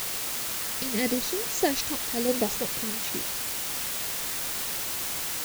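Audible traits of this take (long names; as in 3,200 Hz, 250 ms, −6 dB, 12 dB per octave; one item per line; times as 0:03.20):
phaser sweep stages 2, 0.91 Hz, lowest notch 670–2,100 Hz
sample-and-hold tremolo, depth 55%
a quantiser's noise floor 6 bits, dither triangular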